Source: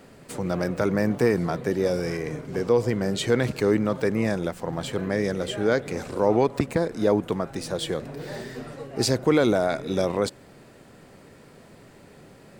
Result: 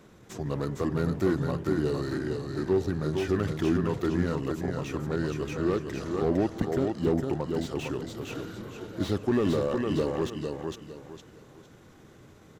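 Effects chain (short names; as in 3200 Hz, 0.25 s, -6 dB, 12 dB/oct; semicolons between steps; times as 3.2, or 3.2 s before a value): pitch shift -4 st; feedback echo 0.457 s, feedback 30%, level -5.5 dB; slew limiter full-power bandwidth 74 Hz; gain -4.5 dB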